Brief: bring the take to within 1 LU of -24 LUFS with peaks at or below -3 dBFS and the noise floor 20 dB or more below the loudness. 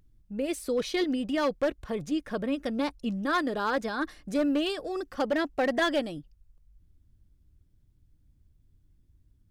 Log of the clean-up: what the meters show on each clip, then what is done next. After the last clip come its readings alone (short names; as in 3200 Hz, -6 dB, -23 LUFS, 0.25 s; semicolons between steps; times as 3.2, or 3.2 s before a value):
clipped 0.8%; flat tops at -20.5 dBFS; loudness -29.5 LUFS; peak -20.5 dBFS; loudness target -24.0 LUFS
-> clip repair -20.5 dBFS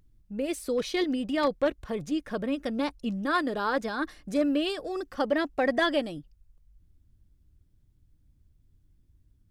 clipped 0.0%; loudness -29.0 LUFS; peak -12.5 dBFS; loudness target -24.0 LUFS
-> gain +5 dB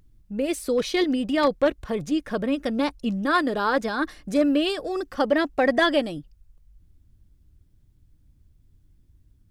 loudness -24.0 LUFS; peak -7.5 dBFS; noise floor -60 dBFS